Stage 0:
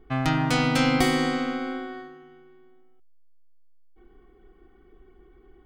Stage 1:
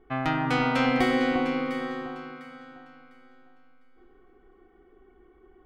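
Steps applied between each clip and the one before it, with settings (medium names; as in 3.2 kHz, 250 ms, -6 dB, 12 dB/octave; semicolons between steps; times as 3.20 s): tone controls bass -8 dB, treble -15 dB; on a send: echo whose repeats swap between lows and highs 351 ms, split 1.5 kHz, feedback 51%, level -5 dB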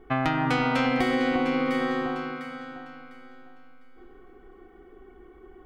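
compression 6:1, threshold -28 dBFS, peak gain reduction 9 dB; trim +7 dB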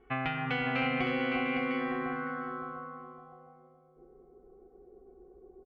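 comb of notches 310 Hz; feedback delay 560 ms, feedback 36%, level -7 dB; low-pass sweep 2.6 kHz -> 550 Hz, 1.53–3.98 s; trim -8 dB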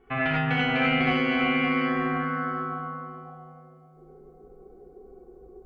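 gated-style reverb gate 120 ms rising, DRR -5 dB; trim +2 dB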